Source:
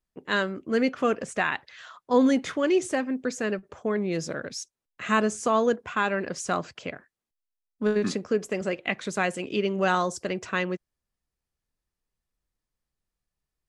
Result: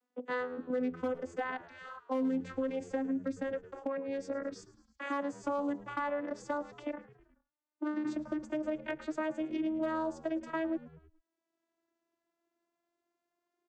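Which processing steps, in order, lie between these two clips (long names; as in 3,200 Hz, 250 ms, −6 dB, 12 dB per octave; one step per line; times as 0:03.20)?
vocoder with a gliding carrier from B3, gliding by +6 semitones
high-pass filter 370 Hz 12 dB per octave
parametric band 4,400 Hz −8 dB 2.5 octaves
in parallel at 0 dB: brickwall limiter −27 dBFS, peak gain reduction 11 dB
on the sum: downward compressor 2 to 1, threshold −36 dBFS, peak gain reduction 10.5 dB
hard clipping −25.5 dBFS, distortion −31 dB
on a send: echo with shifted repeats 107 ms, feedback 51%, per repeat −83 Hz, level −19 dB
on the sum: multiband upward and downward compressor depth 40%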